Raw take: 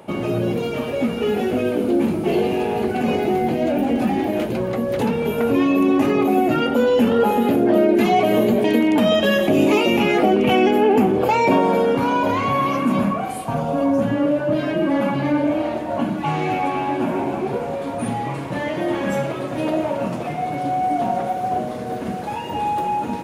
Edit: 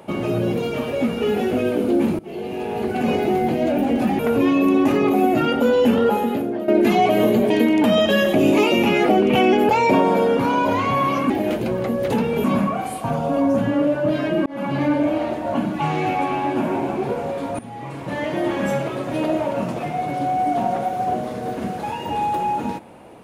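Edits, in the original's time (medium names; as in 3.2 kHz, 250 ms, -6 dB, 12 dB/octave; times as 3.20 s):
2.19–3.06 s: fade in, from -21.5 dB
4.19–5.33 s: move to 12.88 s
7.12–7.82 s: fade out, to -14 dB
10.83–11.27 s: delete
14.90–15.20 s: fade in
18.03–18.71 s: fade in, from -17 dB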